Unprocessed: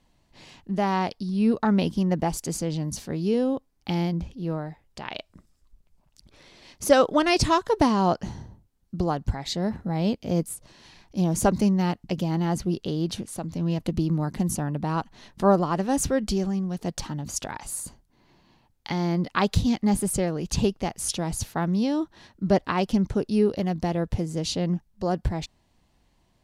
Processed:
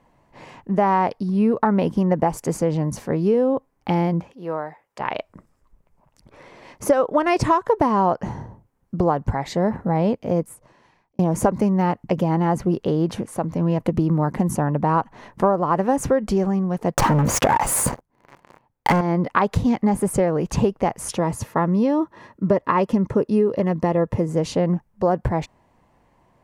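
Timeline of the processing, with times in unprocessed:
4.20–5.00 s: high-pass 770 Hz 6 dB/octave
9.90–11.19 s: fade out
16.94–19.01 s: waveshaping leveller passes 5
21.19–24.29 s: comb of notches 760 Hz
whole clip: ten-band graphic EQ 125 Hz +7 dB, 250 Hz +4 dB, 500 Hz +10 dB, 1 kHz +11 dB, 2 kHz +7 dB, 4 kHz -7 dB; compression 10:1, threshold -13 dBFS; trim -1 dB

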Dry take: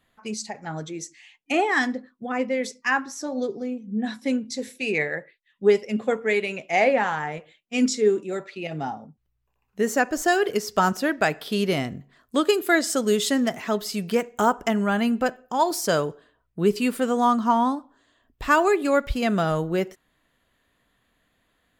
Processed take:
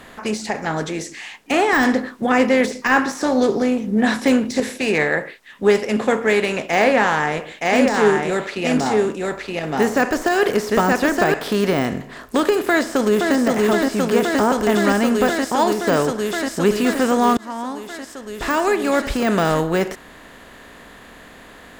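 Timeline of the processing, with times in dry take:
1.73–4.60 s: gain +5.5 dB
6.69–11.34 s: delay 920 ms -4 dB
12.62–13.36 s: echo throw 520 ms, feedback 80%, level -2.5 dB
17.37–19.55 s: fade in
whole clip: spectral levelling over time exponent 0.6; de-esser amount 60%; trim +1.5 dB

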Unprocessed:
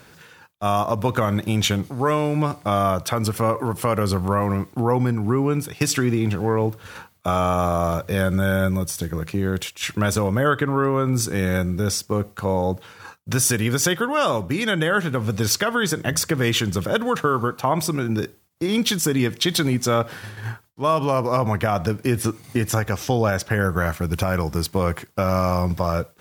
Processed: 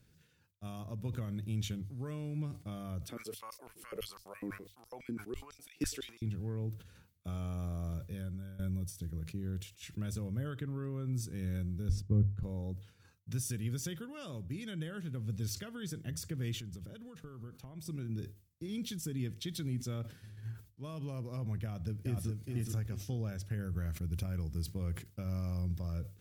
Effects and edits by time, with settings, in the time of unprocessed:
3.09–6.22 s: step-sequenced high-pass 12 Hz 290–5100 Hz
7.97–8.59 s: fade out, to -16.5 dB
11.89–12.43 s: tilt EQ -4 dB/octave
16.60–17.86 s: compression 2.5:1, threshold -28 dBFS
21.63–22.44 s: echo throw 420 ms, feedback 30%, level -4 dB
whole clip: amplifier tone stack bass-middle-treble 10-0-1; hum notches 50/100 Hz; decay stretcher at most 140 dB/s

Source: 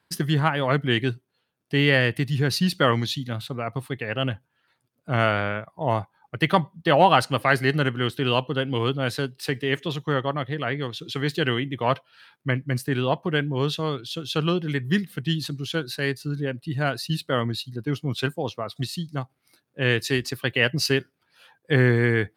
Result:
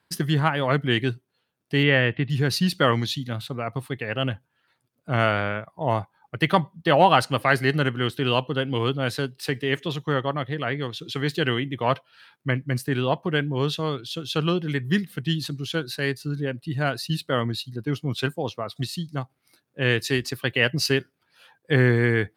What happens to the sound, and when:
1.83–2.30 s: steep low-pass 3.5 kHz

